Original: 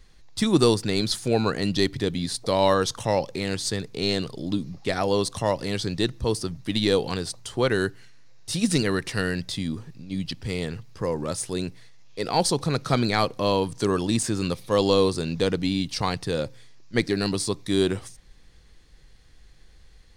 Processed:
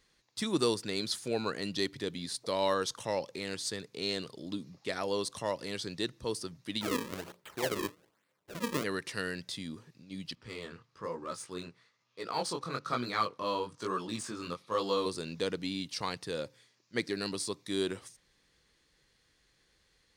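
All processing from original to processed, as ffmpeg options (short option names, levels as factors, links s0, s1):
-filter_complex "[0:a]asettb=1/sr,asplit=3[s0][s1][s2];[s0]atrim=end=6.814[s3];[s1]atrim=start=6.81:end=8.84,asetpts=PTS-STARTPTS,afade=t=in:d=0.004:c=qsin,afade=t=out:st=2.026:d=0.004:c=qsin,aemphasis=mode=reproduction:type=50kf,bandreject=f=60:t=h:w=6,bandreject=f=120:t=h:w=6,bandreject=f=180:t=h:w=6,bandreject=f=240:t=h:w=6,bandreject=f=300:t=h:w=6,bandreject=f=360:t=h:w=6,bandreject=f=420:t=h:w=6,bandreject=f=480:t=h:w=6,bandreject=f=540:t=h:w=6,bandreject=f=600:t=h:w=6,acrusher=samples=35:mix=1:aa=0.000001:lfo=1:lforange=56:lforate=1.2[s4];[s2]atrim=start=8.836[s5];[s3][s4]acrossfade=d=0.004:c1=hsin:c2=qsin[s6];[s6][s5]acrossfade=d=0.004:c1=qsin:c2=hsin,asettb=1/sr,asplit=3[s7][s8][s9];[s7]atrim=end=10.354[s10];[s8]atrim=start=10.35:end=15.06,asetpts=PTS-STARTPTS,afade=t=in:d=0.004:c=qsin,afade=t=out:st=4.706:d=0.004:c=qsin,equalizer=f=1200:w=2.8:g=9.5,adynamicsmooth=sensitivity=7:basefreq=6600,flanger=delay=16:depth=7.8:speed=1.1[s11];[s9]atrim=start=15.056[s12];[s10][s11]acrossfade=d=0.004:c1=hsin:c2=qsin[s13];[s13][s12]acrossfade=d=0.004:c1=qsin:c2=hsin,highpass=f=320:p=1,equalizer=f=750:w=5.6:g=-6,volume=0.422"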